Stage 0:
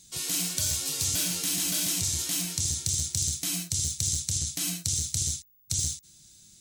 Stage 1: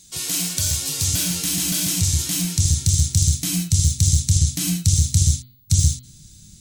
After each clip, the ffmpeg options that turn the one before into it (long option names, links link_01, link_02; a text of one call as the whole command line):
ffmpeg -i in.wav -af "asubboost=boost=5.5:cutoff=230,bandreject=frequency=123.6:width_type=h:width=4,bandreject=frequency=247.2:width_type=h:width=4,bandreject=frequency=370.8:width_type=h:width=4,bandreject=frequency=494.4:width_type=h:width=4,bandreject=frequency=618:width_type=h:width=4,bandreject=frequency=741.6:width_type=h:width=4,bandreject=frequency=865.2:width_type=h:width=4,bandreject=frequency=988.8:width_type=h:width=4,bandreject=frequency=1112.4:width_type=h:width=4,bandreject=frequency=1236:width_type=h:width=4,bandreject=frequency=1359.6:width_type=h:width=4,bandreject=frequency=1483.2:width_type=h:width=4,bandreject=frequency=1606.8:width_type=h:width=4,bandreject=frequency=1730.4:width_type=h:width=4,bandreject=frequency=1854:width_type=h:width=4,bandreject=frequency=1977.6:width_type=h:width=4,bandreject=frequency=2101.2:width_type=h:width=4,bandreject=frequency=2224.8:width_type=h:width=4,bandreject=frequency=2348.4:width_type=h:width=4,bandreject=frequency=2472:width_type=h:width=4,bandreject=frequency=2595.6:width_type=h:width=4,bandreject=frequency=2719.2:width_type=h:width=4,bandreject=frequency=2842.8:width_type=h:width=4,bandreject=frequency=2966.4:width_type=h:width=4,bandreject=frequency=3090:width_type=h:width=4,bandreject=frequency=3213.6:width_type=h:width=4,bandreject=frequency=3337.2:width_type=h:width=4,bandreject=frequency=3460.8:width_type=h:width=4,bandreject=frequency=3584.4:width_type=h:width=4,bandreject=frequency=3708:width_type=h:width=4,bandreject=frequency=3831.6:width_type=h:width=4,bandreject=frequency=3955.2:width_type=h:width=4,bandreject=frequency=4078.8:width_type=h:width=4,bandreject=frequency=4202.4:width_type=h:width=4,bandreject=frequency=4326:width_type=h:width=4,bandreject=frequency=4449.6:width_type=h:width=4,bandreject=frequency=4573.2:width_type=h:width=4,bandreject=frequency=4696.8:width_type=h:width=4,volume=5.5dB" out.wav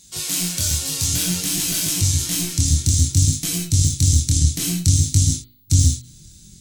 ffmpeg -i in.wav -af "tremolo=f=180:d=0.4,flanger=delay=19:depth=6.8:speed=0.56,volume=5.5dB" out.wav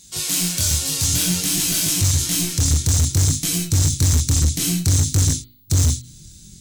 ffmpeg -i in.wav -af "volume=14.5dB,asoftclip=hard,volume=-14.5dB,volume=2dB" out.wav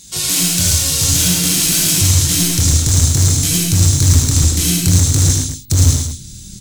ffmpeg -i in.wav -filter_complex "[0:a]asplit=2[link_01][link_02];[link_02]acompressor=threshold=-26dB:ratio=6,volume=-1dB[link_03];[link_01][link_03]amix=inputs=2:normalize=0,aecho=1:1:75.8|110.8|212.8:0.631|0.562|0.355,volume=1dB" out.wav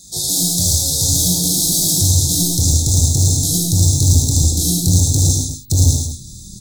ffmpeg -i in.wav -af "asuperstop=centerf=1800:order=20:qfactor=0.69,volume=-1.5dB" out.wav